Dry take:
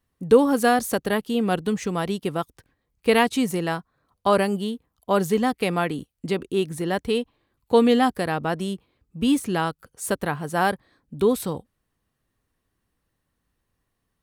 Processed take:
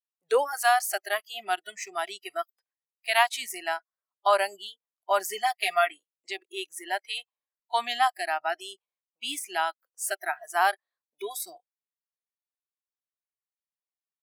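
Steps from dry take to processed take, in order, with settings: high-pass 580 Hz 24 dB/octave; spectral noise reduction 27 dB; 5.24–5.91 s: comb 4.3 ms, depth 87%

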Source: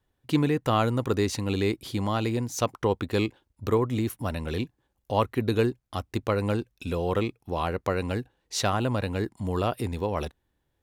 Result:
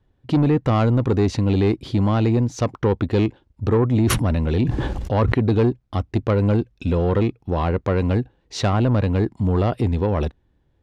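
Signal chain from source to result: low-pass 4.9 kHz 12 dB/octave; bass shelf 500 Hz +10 dB; in parallel at -3 dB: peak limiter -13 dBFS, peak gain reduction 8.5 dB; on the sum: saturation -9.5 dBFS, distortion -17 dB; 3.87–5.34 s: decay stretcher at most 23 dB/s; trim -1.5 dB

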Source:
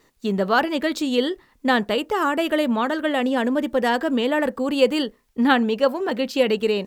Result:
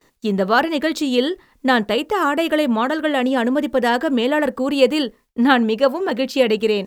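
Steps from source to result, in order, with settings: gate with hold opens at -49 dBFS; trim +3 dB

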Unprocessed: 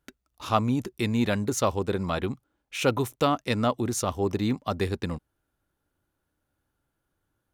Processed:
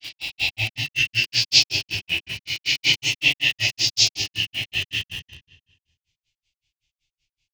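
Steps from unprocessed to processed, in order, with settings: reverse spectral sustain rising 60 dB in 1.39 s; peaking EQ 3.6 kHz +15 dB 1.4 oct; feedback delay 162 ms, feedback 57%, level -23 dB; plate-style reverb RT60 1.2 s, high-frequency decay 0.75×, DRR -8.5 dB; formant shift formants -5 st; FFT filter 170 Hz 0 dB, 510 Hz -22 dB, 3.2 kHz +10 dB, 6.2 kHz +13 dB, 9.8 kHz -16 dB; granulator 129 ms, grains 5.3 per s, spray 17 ms, pitch spread up and down by 0 st; static phaser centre 500 Hz, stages 4; in parallel at -9 dB: bit crusher 4-bit; on the sum: decay stretcher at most 120 dB/s; trim -10.5 dB

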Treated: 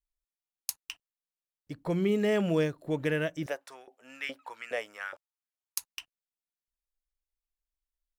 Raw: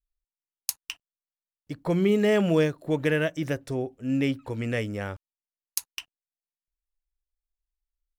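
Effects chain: 3.46–5.78 s: LFO high-pass saw up 2.4 Hz 580–1700 Hz; trim -5 dB

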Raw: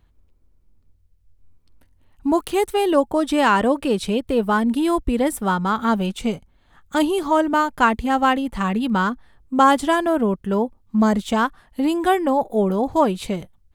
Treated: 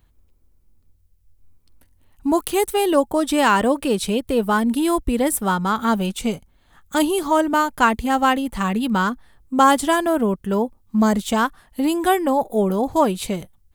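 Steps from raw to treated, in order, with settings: treble shelf 7.1 kHz +11.5 dB

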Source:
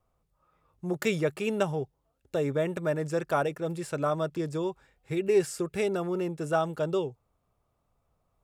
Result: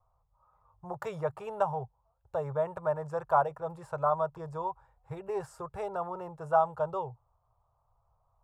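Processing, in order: FFT filter 120 Hz 0 dB, 260 Hz -30 dB, 480 Hz -8 dB, 950 Hz +7 dB, 2.2 kHz -20 dB; trim +2.5 dB

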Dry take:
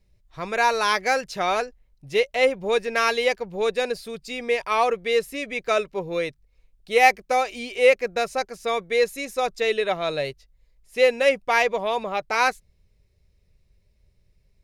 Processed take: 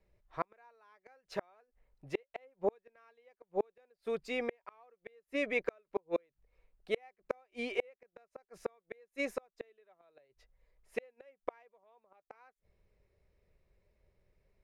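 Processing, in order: three-band isolator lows -12 dB, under 300 Hz, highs -16 dB, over 2.1 kHz; inverted gate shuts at -21 dBFS, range -41 dB; trim +1 dB

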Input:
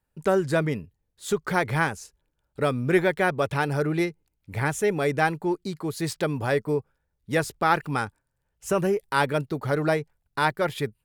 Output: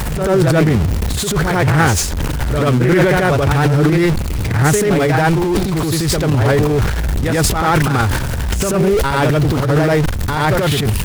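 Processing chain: jump at every zero crossing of -25.5 dBFS; peaking EQ 67 Hz +12.5 dB 1.9 oct; on a send: reverse echo 87 ms -5 dB; on the sum: transient shaper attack -12 dB, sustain +9 dB; loudspeaker Doppler distortion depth 0.27 ms; trim +5.5 dB

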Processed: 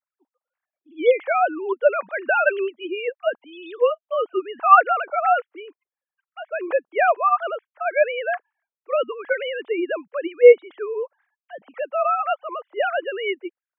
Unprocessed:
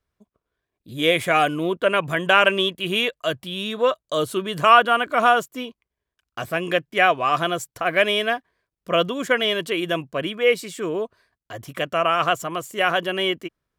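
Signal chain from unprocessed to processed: formants replaced by sine waves; three-band isolator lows -21 dB, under 290 Hz, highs -21 dB, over 2.7 kHz; trim +1 dB

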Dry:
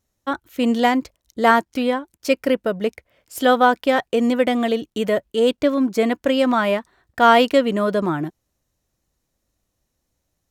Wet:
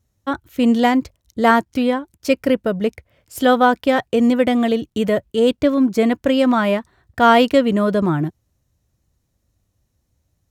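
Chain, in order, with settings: peaking EQ 91 Hz +12.5 dB 2 oct

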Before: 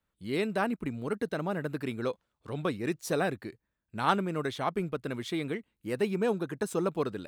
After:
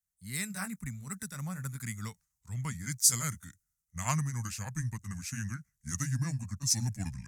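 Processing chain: pitch bend over the whole clip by -7.5 st starting unshifted; FFT filter 120 Hz 0 dB, 210 Hz -7 dB, 350 Hz -30 dB, 2 kHz -2 dB, 3 kHz -14 dB, 6.3 kHz +14 dB; three bands expanded up and down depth 40%; trim +4 dB

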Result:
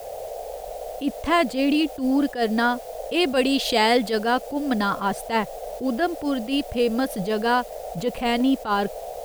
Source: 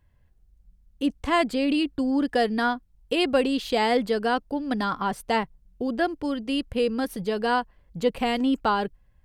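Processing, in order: band noise 460–750 Hz -41 dBFS; in parallel at +2 dB: compression 6:1, threshold -31 dBFS, peak gain reduction 13.5 dB; 3.32–4.23 s: on the sum: treble shelf 2.2 kHz +6.5 dB; word length cut 8-bit, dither triangular; attacks held to a fixed rise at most 180 dB/s

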